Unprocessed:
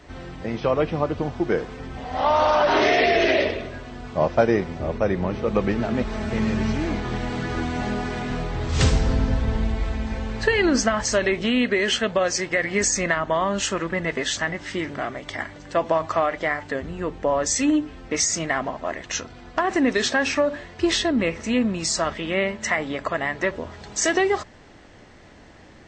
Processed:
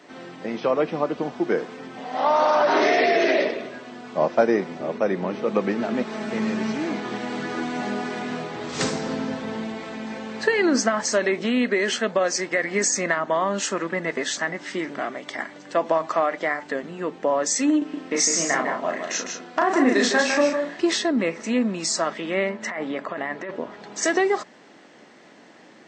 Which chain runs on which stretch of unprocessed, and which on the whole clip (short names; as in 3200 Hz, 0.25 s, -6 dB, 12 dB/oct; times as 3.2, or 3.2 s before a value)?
17.78–20.81 doubler 35 ms -3 dB + echo 0.154 s -6 dB
22.49–24.03 LPF 2300 Hz 6 dB/oct + negative-ratio compressor -28 dBFS
whole clip: HPF 190 Hz 24 dB/oct; dynamic EQ 3000 Hz, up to -6 dB, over -40 dBFS, Q 2.5